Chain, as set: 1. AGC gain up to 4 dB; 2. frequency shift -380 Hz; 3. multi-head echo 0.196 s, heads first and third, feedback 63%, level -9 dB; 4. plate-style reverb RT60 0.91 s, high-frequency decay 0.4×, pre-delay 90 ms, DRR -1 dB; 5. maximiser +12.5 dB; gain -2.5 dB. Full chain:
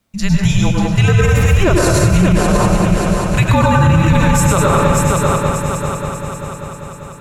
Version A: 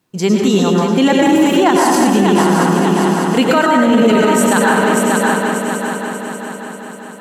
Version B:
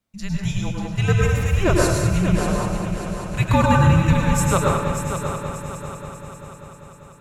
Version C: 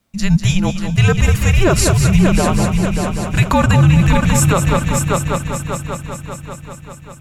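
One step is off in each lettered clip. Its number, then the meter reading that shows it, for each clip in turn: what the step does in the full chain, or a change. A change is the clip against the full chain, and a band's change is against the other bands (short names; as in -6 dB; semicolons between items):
2, 125 Hz band -13.5 dB; 5, crest factor change +7.0 dB; 4, momentary loudness spread change +3 LU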